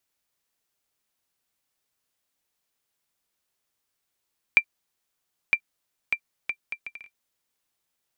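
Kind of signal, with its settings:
bouncing ball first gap 0.96 s, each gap 0.62, 2,360 Hz, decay 72 ms −5 dBFS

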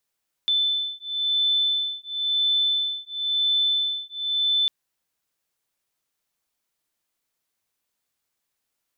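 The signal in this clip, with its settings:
two tones that beat 3,520 Hz, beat 0.97 Hz, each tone −24 dBFS 4.20 s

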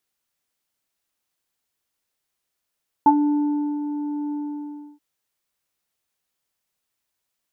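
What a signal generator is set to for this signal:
subtractive voice square D4 24 dB per octave, low-pass 660 Hz, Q 8.1, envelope 0.5 octaves, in 0.11 s, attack 1.6 ms, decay 0.73 s, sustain −9 dB, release 0.67 s, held 1.26 s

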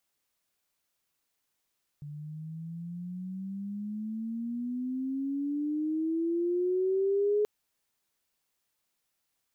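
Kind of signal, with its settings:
pitch glide with a swell sine, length 5.43 s, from 145 Hz, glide +18.5 semitones, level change +15.5 dB, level −23 dB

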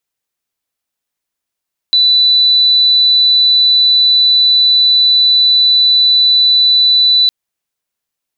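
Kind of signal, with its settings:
tone sine 3,980 Hz −6 dBFS 5.36 s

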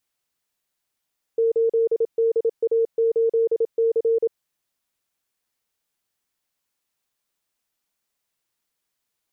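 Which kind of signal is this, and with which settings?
Morse code "8DA8C" 27 words per minute 456 Hz −16 dBFS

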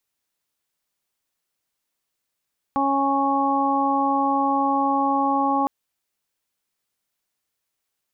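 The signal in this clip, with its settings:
steady harmonic partials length 2.91 s, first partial 276 Hz, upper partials −6/2.5/−0.5 dB, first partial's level −23.5 dB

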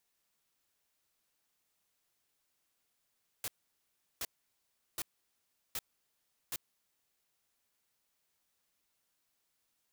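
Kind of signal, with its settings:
noise bursts white, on 0.04 s, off 0.73 s, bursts 5, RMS −37.5 dBFS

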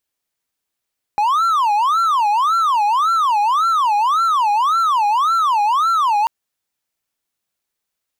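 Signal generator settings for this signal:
siren wail 820–1,360 Hz 1.8 per second triangle −11 dBFS 5.09 s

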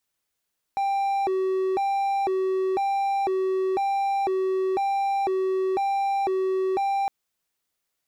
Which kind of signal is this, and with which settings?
siren hi-lo 378–790 Hz 1 per second triangle −19.5 dBFS 6.31 s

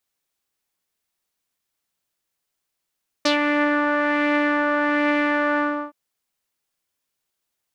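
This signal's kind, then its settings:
subtractive patch with filter wobble D5, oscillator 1 saw, oscillator 2 saw, interval −12 semitones, sub −3 dB, noise −12 dB, filter lowpass, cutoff 980 Hz, filter envelope 2.5 octaves, filter decay 0.12 s, filter sustain 35%, attack 6.8 ms, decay 0.12 s, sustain −4.5 dB, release 0.33 s, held 2.34 s, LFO 1.2 Hz, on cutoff 0.2 octaves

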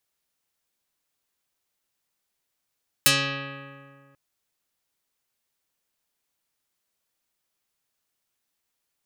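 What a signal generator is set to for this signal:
Karplus-Strong string C#3, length 1.09 s, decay 2.10 s, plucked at 0.4, dark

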